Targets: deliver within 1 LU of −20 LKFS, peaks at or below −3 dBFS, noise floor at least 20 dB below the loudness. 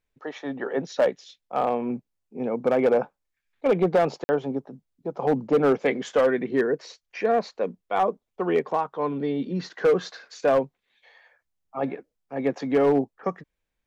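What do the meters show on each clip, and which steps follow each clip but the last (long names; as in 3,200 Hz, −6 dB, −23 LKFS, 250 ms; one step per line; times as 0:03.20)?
share of clipped samples 1.0%; peaks flattened at −14.0 dBFS; number of dropouts 1; longest dropout 50 ms; integrated loudness −25.5 LKFS; sample peak −14.0 dBFS; target loudness −20.0 LKFS
→ clipped peaks rebuilt −14 dBFS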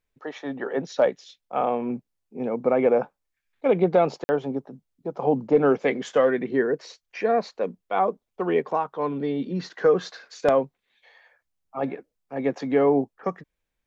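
share of clipped samples 0.0%; number of dropouts 1; longest dropout 50 ms
→ repair the gap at 0:04.24, 50 ms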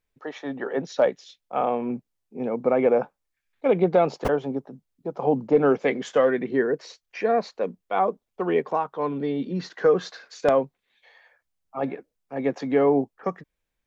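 number of dropouts 0; integrated loudness −24.5 LKFS; sample peak −5.0 dBFS; target loudness −20.0 LKFS
→ level +4.5 dB
brickwall limiter −3 dBFS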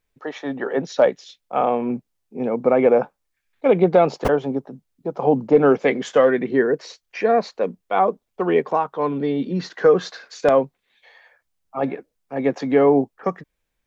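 integrated loudness −20.0 LKFS; sample peak −3.0 dBFS; background noise floor −76 dBFS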